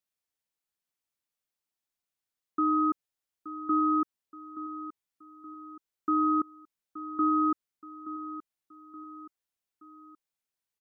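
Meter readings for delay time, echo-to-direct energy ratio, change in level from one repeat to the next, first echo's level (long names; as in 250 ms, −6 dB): 874 ms, −12.5 dB, −6.5 dB, −13.5 dB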